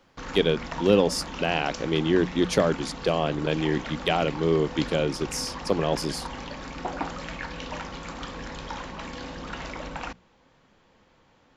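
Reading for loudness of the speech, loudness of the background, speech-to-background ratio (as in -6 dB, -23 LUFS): -25.5 LUFS, -36.5 LUFS, 11.0 dB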